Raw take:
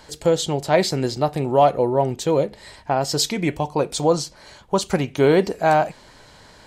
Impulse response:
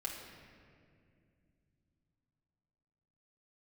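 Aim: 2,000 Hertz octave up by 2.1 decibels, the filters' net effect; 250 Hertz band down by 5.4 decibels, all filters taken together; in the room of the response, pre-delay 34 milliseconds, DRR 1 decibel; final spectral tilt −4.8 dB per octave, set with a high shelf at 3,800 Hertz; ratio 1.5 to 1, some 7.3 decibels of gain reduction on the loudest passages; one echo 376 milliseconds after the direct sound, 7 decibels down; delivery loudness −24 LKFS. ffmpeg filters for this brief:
-filter_complex "[0:a]equalizer=frequency=250:width_type=o:gain=-8.5,equalizer=frequency=2000:width_type=o:gain=4,highshelf=frequency=3800:gain=-4.5,acompressor=threshold=-32dB:ratio=1.5,aecho=1:1:376:0.447,asplit=2[link_01][link_02];[1:a]atrim=start_sample=2205,adelay=34[link_03];[link_02][link_03]afir=irnorm=-1:irlink=0,volume=-1.5dB[link_04];[link_01][link_04]amix=inputs=2:normalize=0,volume=1dB"

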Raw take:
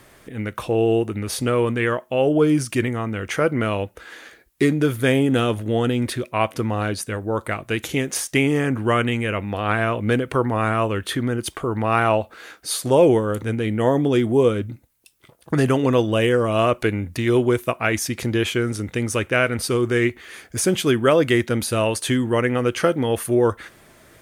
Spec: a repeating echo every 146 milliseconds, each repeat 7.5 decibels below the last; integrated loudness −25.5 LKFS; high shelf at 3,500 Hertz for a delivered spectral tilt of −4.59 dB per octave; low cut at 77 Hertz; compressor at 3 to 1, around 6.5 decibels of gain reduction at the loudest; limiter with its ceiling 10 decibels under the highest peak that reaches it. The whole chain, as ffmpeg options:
ffmpeg -i in.wav -af "highpass=77,highshelf=frequency=3500:gain=4,acompressor=threshold=-20dB:ratio=3,alimiter=limit=-16dB:level=0:latency=1,aecho=1:1:146|292|438|584|730:0.422|0.177|0.0744|0.0312|0.0131,volume=1dB" out.wav

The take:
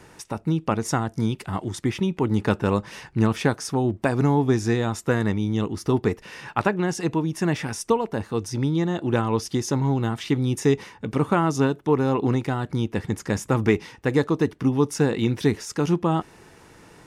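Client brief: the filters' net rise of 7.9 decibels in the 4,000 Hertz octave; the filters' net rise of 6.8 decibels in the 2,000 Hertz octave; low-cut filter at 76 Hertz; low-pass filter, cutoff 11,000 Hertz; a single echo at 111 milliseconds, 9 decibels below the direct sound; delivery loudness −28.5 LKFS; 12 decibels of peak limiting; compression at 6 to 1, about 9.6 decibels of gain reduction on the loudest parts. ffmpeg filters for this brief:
ffmpeg -i in.wav -af "highpass=76,lowpass=11000,equalizer=frequency=2000:width_type=o:gain=7,equalizer=frequency=4000:width_type=o:gain=8,acompressor=threshold=-24dB:ratio=6,alimiter=limit=-20dB:level=0:latency=1,aecho=1:1:111:0.355,volume=2.5dB" out.wav

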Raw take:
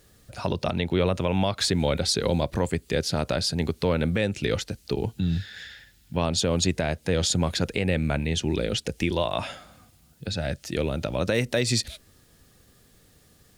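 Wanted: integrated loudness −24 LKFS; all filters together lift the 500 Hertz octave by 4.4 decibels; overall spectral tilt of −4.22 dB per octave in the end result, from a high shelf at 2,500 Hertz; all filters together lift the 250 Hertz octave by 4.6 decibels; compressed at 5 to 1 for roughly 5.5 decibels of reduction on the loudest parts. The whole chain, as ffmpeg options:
ffmpeg -i in.wav -af "equalizer=frequency=250:width_type=o:gain=5.5,equalizer=frequency=500:width_type=o:gain=3.5,highshelf=frequency=2500:gain=6.5,acompressor=threshold=-21dB:ratio=5,volume=2.5dB" out.wav

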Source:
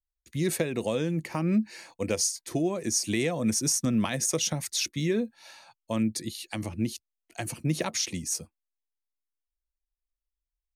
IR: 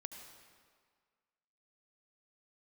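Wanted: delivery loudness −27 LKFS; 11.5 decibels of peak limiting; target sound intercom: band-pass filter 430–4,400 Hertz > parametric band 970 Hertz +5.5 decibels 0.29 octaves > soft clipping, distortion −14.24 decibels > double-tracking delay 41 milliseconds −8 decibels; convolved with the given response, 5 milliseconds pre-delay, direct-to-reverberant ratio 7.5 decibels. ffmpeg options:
-filter_complex "[0:a]alimiter=level_in=0.5dB:limit=-24dB:level=0:latency=1,volume=-0.5dB,asplit=2[link_01][link_02];[1:a]atrim=start_sample=2205,adelay=5[link_03];[link_02][link_03]afir=irnorm=-1:irlink=0,volume=-4dB[link_04];[link_01][link_04]amix=inputs=2:normalize=0,highpass=430,lowpass=4400,equalizer=frequency=970:width_type=o:width=0.29:gain=5.5,asoftclip=threshold=-33dB,asplit=2[link_05][link_06];[link_06]adelay=41,volume=-8dB[link_07];[link_05][link_07]amix=inputs=2:normalize=0,volume=14dB"

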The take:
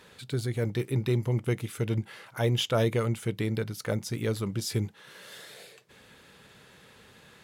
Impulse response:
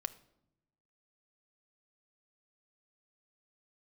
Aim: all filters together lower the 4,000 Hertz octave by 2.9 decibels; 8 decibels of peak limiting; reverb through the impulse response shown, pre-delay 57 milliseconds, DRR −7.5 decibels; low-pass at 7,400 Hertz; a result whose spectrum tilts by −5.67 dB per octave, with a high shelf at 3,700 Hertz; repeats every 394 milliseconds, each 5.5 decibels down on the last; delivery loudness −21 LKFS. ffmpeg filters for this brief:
-filter_complex "[0:a]lowpass=7400,highshelf=frequency=3700:gain=6.5,equalizer=frequency=4000:width_type=o:gain=-8,alimiter=limit=-23.5dB:level=0:latency=1,aecho=1:1:394|788|1182|1576|1970|2364|2758:0.531|0.281|0.149|0.079|0.0419|0.0222|0.0118,asplit=2[link_01][link_02];[1:a]atrim=start_sample=2205,adelay=57[link_03];[link_02][link_03]afir=irnorm=-1:irlink=0,volume=8.5dB[link_04];[link_01][link_04]amix=inputs=2:normalize=0,volume=3.5dB"

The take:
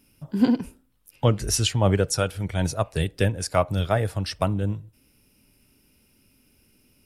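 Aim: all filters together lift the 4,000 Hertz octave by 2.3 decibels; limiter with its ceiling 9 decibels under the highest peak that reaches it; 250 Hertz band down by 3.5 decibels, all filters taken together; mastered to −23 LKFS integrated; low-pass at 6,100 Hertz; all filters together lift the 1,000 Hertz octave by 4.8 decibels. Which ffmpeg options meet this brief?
ffmpeg -i in.wav -af "lowpass=6100,equalizer=frequency=250:width_type=o:gain=-4.5,equalizer=frequency=1000:width_type=o:gain=6.5,equalizer=frequency=4000:width_type=o:gain=4,volume=3.5dB,alimiter=limit=-8.5dB:level=0:latency=1" out.wav

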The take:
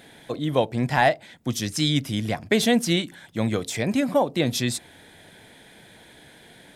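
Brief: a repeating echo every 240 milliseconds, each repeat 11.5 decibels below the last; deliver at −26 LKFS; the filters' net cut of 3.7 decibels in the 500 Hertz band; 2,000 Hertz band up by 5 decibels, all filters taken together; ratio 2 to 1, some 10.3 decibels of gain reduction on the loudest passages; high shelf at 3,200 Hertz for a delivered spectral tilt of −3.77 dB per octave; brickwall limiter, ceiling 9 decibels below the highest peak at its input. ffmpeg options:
ffmpeg -i in.wav -af "equalizer=frequency=500:width_type=o:gain=-5,equalizer=frequency=2000:width_type=o:gain=5,highshelf=frequency=3200:gain=3,acompressor=threshold=-32dB:ratio=2,alimiter=limit=-21.5dB:level=0:latency=1,aecho=1:1:240|480|720:0.266|0.0718|0.0194,volume=7dB" out.wav

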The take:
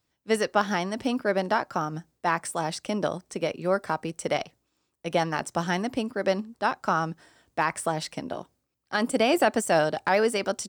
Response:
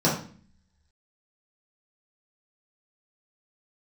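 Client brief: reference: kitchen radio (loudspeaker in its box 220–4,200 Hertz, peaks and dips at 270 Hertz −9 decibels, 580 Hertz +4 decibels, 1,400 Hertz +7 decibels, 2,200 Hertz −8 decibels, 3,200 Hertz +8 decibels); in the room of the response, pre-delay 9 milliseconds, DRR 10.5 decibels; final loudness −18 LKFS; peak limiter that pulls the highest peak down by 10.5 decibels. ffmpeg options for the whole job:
-filter_complex "[0:a]alimiter=limit=-19.5dB:level=0:latency=1,asplit=2[link_01][link_02];[1:a]atrim=start_sample=2205,adelay=9[link_03];[link_02][link_03]afir=irnorm=-1:irlink=0,volume=-26dB[link_04];[link_01][link_04]amix=inputs=2:normalize=0,highpass=220,equalizer=frequency=270:width_type=q:width=4:gain=-9,equalizer=frequency=580:width_type=q:width=4:gain=4,equalizer=frequency=1400:width_type=q:width=4:gain=7,equalizer=frequency=2200:width_type=q:width=4:gain=-8,equalizer=frequency=3200:width_type=q:width=4:gain=8,lowpass=frequency=4200:width=0.5412,lowpass=frequency=4200:width=1.3066,volume=12.5dB"

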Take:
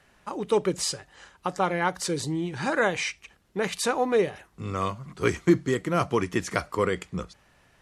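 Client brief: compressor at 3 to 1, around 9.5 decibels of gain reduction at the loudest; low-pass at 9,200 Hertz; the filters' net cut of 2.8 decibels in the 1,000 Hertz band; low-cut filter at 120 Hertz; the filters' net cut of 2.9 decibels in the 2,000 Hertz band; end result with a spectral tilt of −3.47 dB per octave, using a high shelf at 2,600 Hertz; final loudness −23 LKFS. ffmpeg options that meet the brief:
ffmpeg -i in.wav -af "highpass=120,lowpass=9200,equalizer=frequency=1000:width_type=o:gain=-3.5,equalizer=frequency=2000:width_type=o:gain=-6,highshelf=frequency=2600:gain=8,acompressor=threshold=-27dB:ratio=3,volume=9dB" out.wav

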